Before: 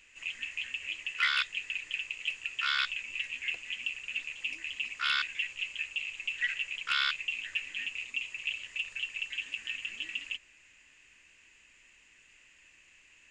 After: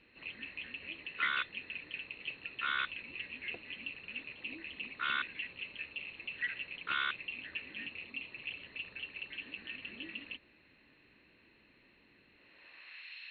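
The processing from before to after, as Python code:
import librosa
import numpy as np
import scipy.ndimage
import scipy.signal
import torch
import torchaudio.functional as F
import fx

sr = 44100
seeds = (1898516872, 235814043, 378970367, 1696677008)

y = fx.freq_compress(x, sr, knee_hz=3500.0, ratio=4.0)
y = fx.filter_sweep_bandpass(y, sr, from_hz=250.0, to_hz=3000.0, start_s=12.36, end_s=13.14, q=0.84)
y = y * 10.0 ** (11.5 / 20.0)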